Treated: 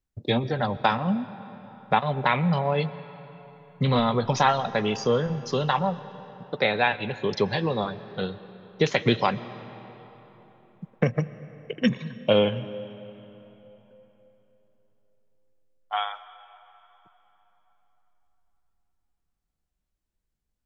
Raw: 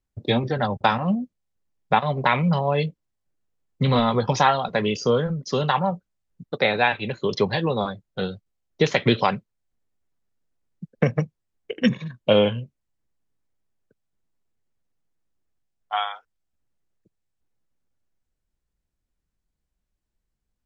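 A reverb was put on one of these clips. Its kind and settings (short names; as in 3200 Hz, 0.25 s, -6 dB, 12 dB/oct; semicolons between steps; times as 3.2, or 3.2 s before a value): digital reverb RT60 3.8 s, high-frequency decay 0.7×, pre-delay 85 ms, DRR 15.5 dB; gain -2.5 dB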